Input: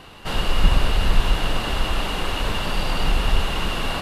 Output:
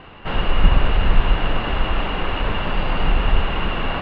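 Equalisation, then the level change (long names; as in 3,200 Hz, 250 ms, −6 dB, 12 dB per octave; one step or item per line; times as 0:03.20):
low-pass filter 2,800 Hz 24 dB per octave
+2.5 dB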